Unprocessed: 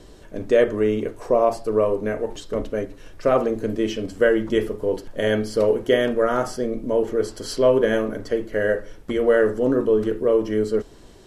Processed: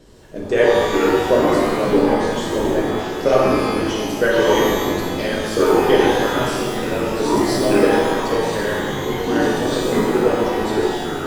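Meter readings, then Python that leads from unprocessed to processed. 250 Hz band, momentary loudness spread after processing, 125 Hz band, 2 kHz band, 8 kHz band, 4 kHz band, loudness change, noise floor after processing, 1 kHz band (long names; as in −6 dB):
+6.0 dB, 7 LU, +6.5 dB, +6.5 dB, +11.0 dB, +10.0 dB, +4.0 dB, −26 dBFS, +9.5 dB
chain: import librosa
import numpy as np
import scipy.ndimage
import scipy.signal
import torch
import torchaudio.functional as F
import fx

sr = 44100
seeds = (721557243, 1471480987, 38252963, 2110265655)

p1 = fx.hpss(x, sr, part='harmonic', gain_db=-13)
p2 = fx.level_steps(p1, sr, step_db=22)
p3 = p1 + F.gain(torch.from_numpy(p2), 0.0).numpy()
p4 = fx.echo_pitch(p3, sr, ms=281, semitones=-4, count=3, db_per_echo=-3.0)
p5 = fx.rev_shimmer(p4, sr, seeds[0], rt60_s=1.4, semitones=12, shimmer_db=-8, drr_db=-4.0)
y = F.gain(torch.from_numpy(p5), -1.0).numpy()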